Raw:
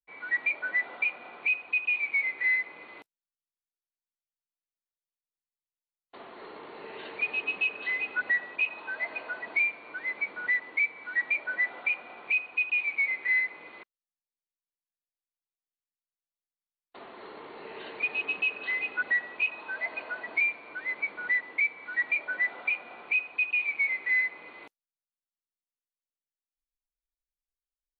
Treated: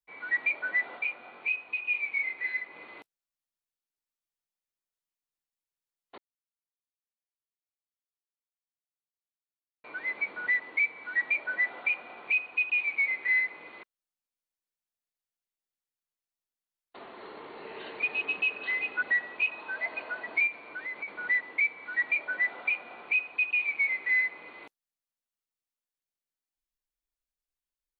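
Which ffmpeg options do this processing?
-filter_complex "[0:a]asplit=3[a][b][c];[a]afade=t=out:st=0.98:d=0.02[d];[b]flanger=delay=18.5:depth=3.5:speed=1.2,afade=t=in:st=0.98:d=0.02,afade=t=out:st=2.73:d=0.02[e];[c]afade=t=in:st=2.73:d=0.02[f];[d][e][f]amix=inputs=3:normalize=0,asettb=1/sr,asplit=3[g][h][i];[g]atrim=end=20.474[j];[h]atrim=start=20.47:end=21.08,asetpts=PTS-STARTPTS,afade=t=in:d=0.004:c=qsin,afade=t=out:st=0.606:d=0.004:c=qsin,acompressor=threshold=-33dB:ratio=6:attack=3.2:release=140:knee=1:detection=peak[k];[i]atrim=start=21.076[l];[j][k]acrossfade=d=0.004:c1=hsin:c2=qsin[m];[m][l]acrossfade=d=0.004:c1=qsin:c2=hsin,asplit=3[n][o][p];[n]atrim=end=6.18,asetpts=PTS-STARTPTS,afade=t=out:st=6.176:d=0.004:c=hsin[q];[o]atrim=start=6.18:end=9.84,asetpts=PTS-STARTPTS,volume=0[r];[p]atrim=start=9.84,asetpts=PTS-STARTPTS,afade=t=in:d=0.004:c=hsin[s];[q][r][s]concat=n=3:v=0:a=1"

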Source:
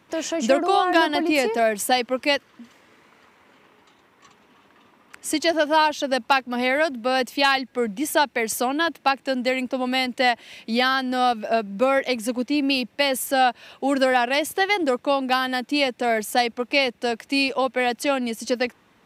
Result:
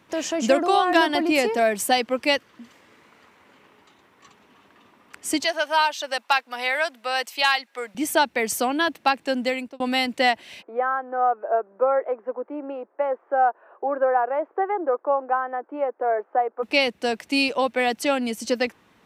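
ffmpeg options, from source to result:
-filter_complex "[0:a]asettb=1/sr,asplit=3[a][b][c];[a]atrim=end=5.444[d];[b]atrim=start=5.44:end=7.95,asetpts=PTS-STARTPTS,afade=t=in:d=0.004:c=qsin,afade=t=out:st=2.506:d=0.004:c=qsin,highpass=770[e];[c]atrim=start=7.946[f];[d][e]acrossfade=d=0.004:c1=hsin:c2=qsin[g];[g][f]acrossfade=d=0.004:c1=qsin:c2=hsin,asplit=3[h][i][j];[h]afade=t=out:st=10.61:d=0.02[k];[i]asuperpass=centerf=720:order=8:qfactor=0.67,afade=t=in:st=10.61:d=0.02,afade=t=out:st=16.62:d=0.02[l];[j]afade=t=in:st=16.62:d=0.02[m];[k][l][m]amix=inputs=3:normalize=0,asplit=2[n][o];[n]atrim=end=9.8,asetpts=PTS-STARTPTS,afade=t=out:st=9.29:d=0.51:c=qsin[p];[o]atrim=start=9.8,asetpts=PTS-STARTPTS,afade=t=in:d=0.004:c=hsin[q];[p][q]concat=n=2:v=0:a=1"

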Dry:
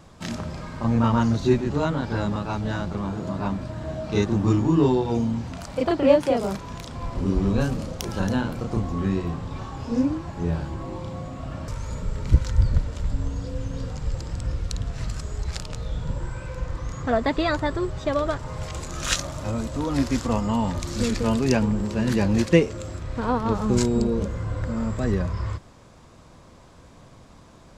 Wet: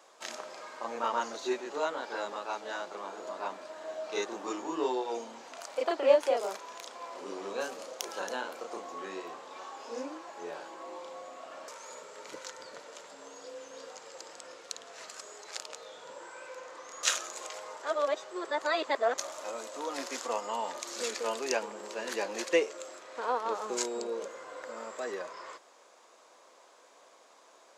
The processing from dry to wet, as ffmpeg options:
-filter_complex "[0:a]asplit=3[a][b][c];[a]atrim=end=17.032[d];[b]atrim=start=17.028:end=19.182,asetpts=PTS-STARTPTS,areverse[e];[c]atrim=start=19.178[f];[d][e]acrossfade=d=0.004:c1=hsin:c2=hsin[g];[g][f]acrossfade=d=0.004:c1=hsin:c2=hsin,highpass=f=440:w=0.5412,highpass=f=440:w=1.3066,equalizer=f=6.6k:w=5.1:g=4.5,volume=-4.5dB"

